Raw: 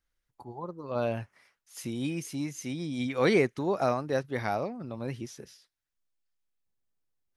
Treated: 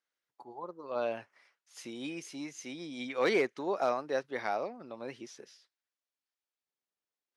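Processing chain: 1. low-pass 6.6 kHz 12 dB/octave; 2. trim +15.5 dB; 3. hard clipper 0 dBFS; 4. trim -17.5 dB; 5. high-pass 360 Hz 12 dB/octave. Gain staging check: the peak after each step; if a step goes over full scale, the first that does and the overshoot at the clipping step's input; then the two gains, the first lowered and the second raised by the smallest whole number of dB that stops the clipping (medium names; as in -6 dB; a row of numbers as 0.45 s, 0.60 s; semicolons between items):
-12.0 dBFS, +3.5 dBFS, 0.0 dBFS, -17.5 dBFS, -16.5 dBFS; step 2, 3.5 dB; step 2 +11.5 dB, step 4 -13.5 dB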